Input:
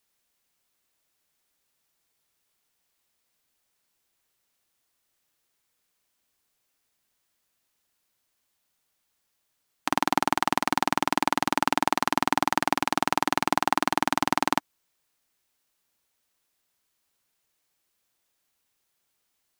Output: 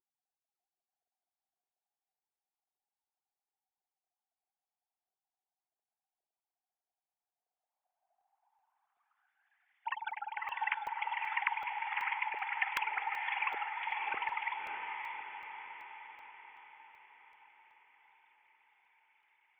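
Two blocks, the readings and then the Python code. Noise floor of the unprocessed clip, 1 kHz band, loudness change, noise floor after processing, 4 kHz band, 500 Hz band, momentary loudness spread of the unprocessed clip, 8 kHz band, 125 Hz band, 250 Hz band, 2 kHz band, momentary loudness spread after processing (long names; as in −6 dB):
−76 dBFS, −12.0 dB, −11.5 dB, below −85 dBFS, −16.0 dB, −25.5 dB, 1 LU, below −30 dB, below −35 dB, below −35 dB, −6.0 dB, 17 LU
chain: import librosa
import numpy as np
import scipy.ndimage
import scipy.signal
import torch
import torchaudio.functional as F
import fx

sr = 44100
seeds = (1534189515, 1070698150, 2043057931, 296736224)

y = fx.sine_speech(x, sr)
y = fx.peak_eq(y, sr, hz=1100.0, db=-9.5, octaves=2.7)
y = fx.over_compress(y, sr, threshold_db=-41.0, ratio=-1.0)
y = fx.echo_diffused(y, sr, ms=611, feedback_pct=55, wet_db=-4)
y = fx.filter_sweep_lowpass(y, sr, from_hz=380.0, to_hz=2200.0, start_s=7.23, end_s=9.9, q=5.3)
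y = fx.buffer_crackle(y, sr, first_s=0.99, period_s=0.38, block=64, kind='zero')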